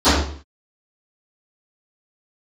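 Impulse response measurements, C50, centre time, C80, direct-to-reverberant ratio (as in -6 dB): 1.0 dB, 59 ms, 4.5 dB, -23.5 dB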